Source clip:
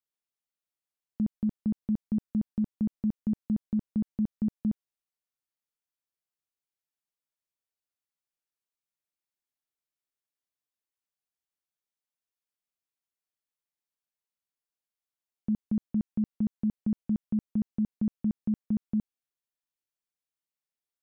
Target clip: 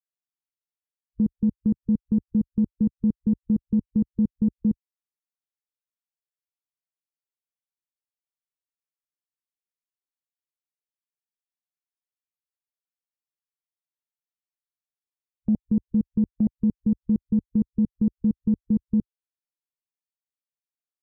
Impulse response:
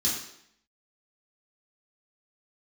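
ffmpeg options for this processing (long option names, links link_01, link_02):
-af "afwtdn=0.0158,volume=6.5dB"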